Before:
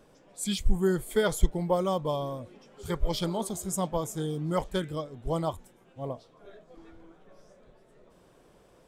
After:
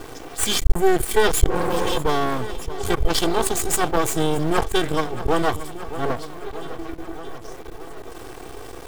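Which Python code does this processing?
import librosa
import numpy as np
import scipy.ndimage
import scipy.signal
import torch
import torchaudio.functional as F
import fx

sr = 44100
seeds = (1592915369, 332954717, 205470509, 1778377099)

p1 = fx.law_mismatch(x, sr, coded='A')
p2 = fx.spec_repair(p1, sr, seeds[0], start_s=1.51, length_s=0.43, low_hz=240.0, high_hz=2300.0, source='after')
p3 = p2 + 0.97 * np.pad(p2, (int(2.6 * sr / 1000.0), 0))[:len(p2)]
p4 = np.maximum(p3, 0.0)
p5 = p4 + fx.echo_feedback(p4, sr, ms=623, feedback_pct=54, wet_db=-22.5, dry=0)
p6 = fx.env_flatten(p5, sr, amount_pct=50)
y = p6 * librosa.db_to_amplitude(3.5)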